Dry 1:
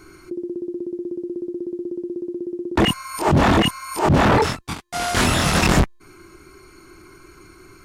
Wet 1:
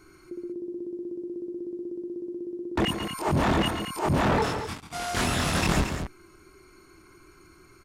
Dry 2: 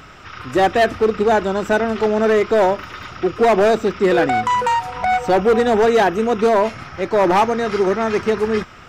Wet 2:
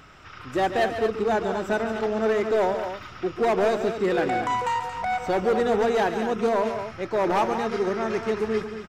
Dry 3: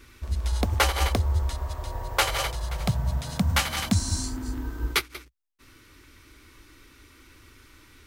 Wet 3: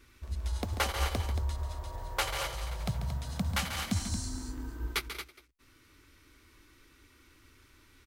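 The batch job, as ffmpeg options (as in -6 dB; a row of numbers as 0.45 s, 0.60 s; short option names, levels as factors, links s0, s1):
-af "aecho=1:1:139.9|227.4:0.316|0.355,volume=0.376"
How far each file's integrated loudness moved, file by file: -7.5 LU, -7.5 LU, -7.5 LU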